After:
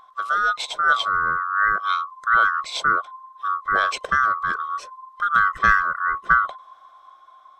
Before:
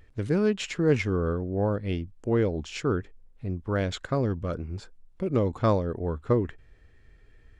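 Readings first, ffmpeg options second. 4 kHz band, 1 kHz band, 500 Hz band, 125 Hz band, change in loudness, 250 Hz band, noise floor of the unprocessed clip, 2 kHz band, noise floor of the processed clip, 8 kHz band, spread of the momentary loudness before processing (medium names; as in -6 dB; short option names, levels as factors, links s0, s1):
+10.0 dB, +18.5 dB, -11.5 dB, -16.5 dB, +7.0 dB, -17.0 dB, -56 dBFS, +20.0 dB, -51 dBFS, +5.0 dB, 10 LU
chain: -af "afftfilt=real='real(if(lt(b,960),b+48*(1-2*mod(floor(b/48),2)),b),0)':imag='imag(if(lt(b,960),b+48*(1-2*mod(floor(b/48),2)),b),0)':win_size=2048:overlap=0.75,dynaudnorm=f=490:g=5:m=1.58,equalizer=f=100:t=o:w=0.67:g=-11,equalizer=f=250:t=o:w=0.67:g=-11,equalizer=f=630:t=o:w=0.67:g=5,equalizer=f=4000:t=o:w=0.67:g=4,volume=1.26"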